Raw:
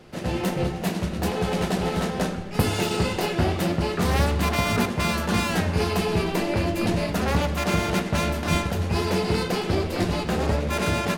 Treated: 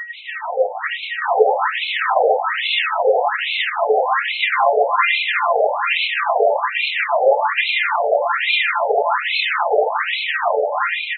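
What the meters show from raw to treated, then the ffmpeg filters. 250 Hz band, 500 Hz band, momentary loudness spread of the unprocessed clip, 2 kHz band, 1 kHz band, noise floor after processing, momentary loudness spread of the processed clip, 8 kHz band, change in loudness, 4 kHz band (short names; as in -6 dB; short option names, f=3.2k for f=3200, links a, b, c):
under -25 dB, +8.5 dB, 4 LU, +11.5 dB, +11.0 dB, -28 dBFS, 4 LU, under -40 dB, +7.0 dB, +8.5 dB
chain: -filter_complex "[0:a]highpass=230,highshelf=f=2k:g=-2,bandreject=f=60:t=h:w=6,bandreject=f=120:t=h:w=6,bandreject=f=180:t=h:w=6,bandreject=f=240:t=h:w=6,bandreject=f=300:t=h:w=6,dynaudnorm=f=190:g=11:m=12dB,aeval=exprs='val(0)+0.0126*sin(2*PI*1900*n/s)':c=same,asoftclip=type=tanh:threshold=-12.5dB,aphaser=in_gain=1:out_gain=1:delay=3.3:decay=0.56:speed=1.2:type=sinusoidal,asplit=2[a][b];[b]aecho=0:1:460|920|1380|1840:0.596|0.203|0.0689|0.0234[c];[a][c]amix=inputs=2:normalize=0,alimiter=level_in=8.5dB:limit=-1dB:release=50:level=0:latency=1,afftfilt=real='re*between(b*sr/1024,570*pow(3000/570,0.5+0.5*sin(2*PI*1.2*pts/sr))/1.41,570*pow(3000/570,0.5+0.5*sin(2*PI*1.2*pts/sr))*1.41)':imag='im*between(b*sr/1024,570*pow(3000/570,0.5+0.5*sin(2*PI*1.2*pts/sr))/1.41,570*pow(3000/570,0.5+0.5*sin(2*PI*1.2*pts/sr))*1.41)':win_size=1024:overlap=0.75"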